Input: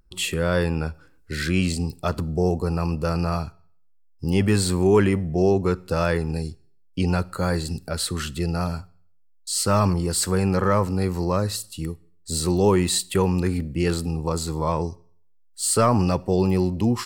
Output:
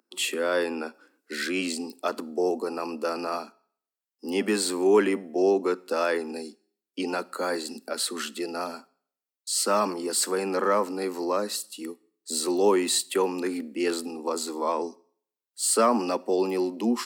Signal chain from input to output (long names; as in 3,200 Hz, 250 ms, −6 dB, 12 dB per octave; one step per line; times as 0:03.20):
Butterworth high-pass 220 Hz 72 dB per octave
level −1.5 dB